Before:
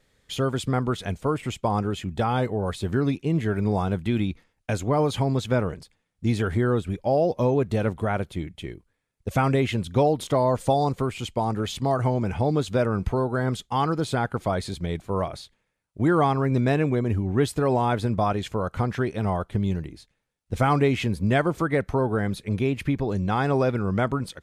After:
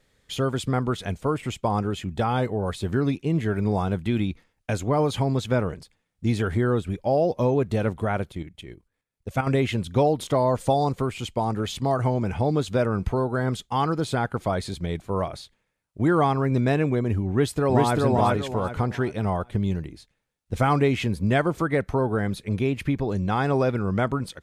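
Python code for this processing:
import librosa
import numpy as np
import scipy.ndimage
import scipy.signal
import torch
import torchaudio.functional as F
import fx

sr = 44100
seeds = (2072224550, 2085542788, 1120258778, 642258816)

y = fx.level_steps(x, sr, step_db=10, at=(8.32, 9.47))
y = fx.echo_throw(y, sr, start_s=17.3, length_s=0.66, ms=390, feedback_pct=30, wet_db=-1.0)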